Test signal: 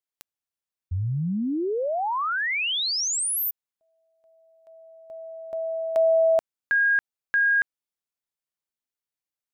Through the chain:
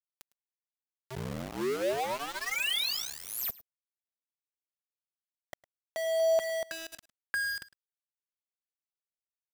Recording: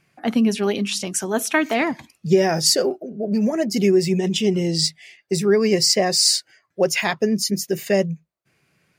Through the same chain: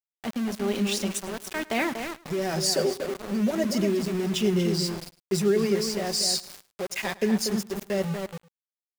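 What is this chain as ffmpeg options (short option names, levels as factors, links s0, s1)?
-filter_complex "[0:a]highpass=f=97:w=0.5412,highpass=f=97:w=1.3066,aecho=1:1:5.2:0.39,alimiter=limit=0.335:level=0:latency=1:release=76,tremolo=f=1.1:d=0.61,asplit=2[s0][s1];[s1]adelay=239,lowpass=f=2100:p=1,volume=0.501,asplit=2[s2][s3];[s3]adelay=239,lowpass=f=2100:p=1,volume=0.26,asplit=2[s4][s5];[s5]adelay=239,lowpass=f=2100:p=1,volume=0.26[s6];[s2][s4][s6]amix=inputs=3:normalize=0[s7];[s0][s7]amix=inputs=2:normalize=0,aeval=exprs='val(0)*gte(abs(val(0)),0.0422)':c=same,asplit=2[s8][s9];[s9]aecho=0:1:106:0.0944[s10];[s8][s10]amix=inputs=2:normalize=0,volume=0.596"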